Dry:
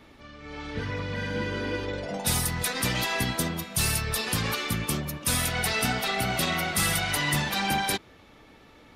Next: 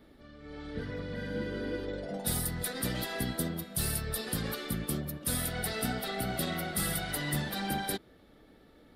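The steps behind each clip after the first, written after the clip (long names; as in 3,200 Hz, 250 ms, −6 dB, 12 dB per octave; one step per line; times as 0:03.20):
graphic EQ with 15 bands 100 Hz −7 dB, 1,000 Hz −11 dB, 2,500 Hz −12 dB, 6,300 Hz −12 dB
level −2.5 dB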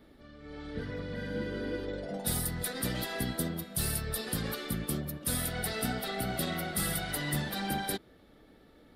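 no processing that can be heard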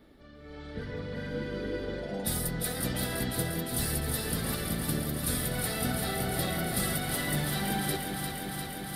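delay that swaps between a low-pass and a high-pass 175 ms, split 810 Hz, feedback 90%, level −5 dB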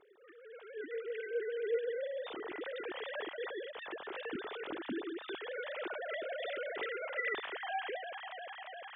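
three sine waves on the formant tracks
level −8 dB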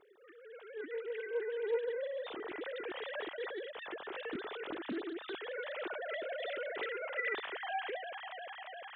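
highs frequency-modulated by the lows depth 0.23 ms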